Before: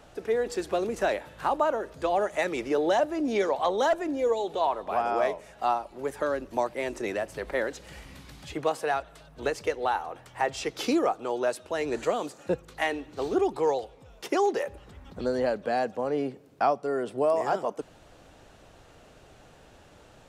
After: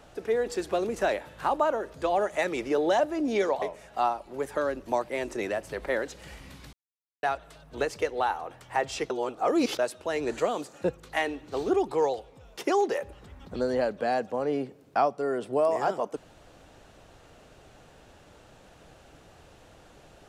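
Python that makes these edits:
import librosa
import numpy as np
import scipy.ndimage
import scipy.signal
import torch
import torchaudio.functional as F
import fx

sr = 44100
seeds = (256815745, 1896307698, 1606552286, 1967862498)

y = fx.edit(x, sr, fx.cut(start_s=3.62, length_s=1.65),
    fx.silence(start_s=8.38, length_s=0.5),
    fx.reverse_span(start_s=10.75, length_s=0.69), tone=tone)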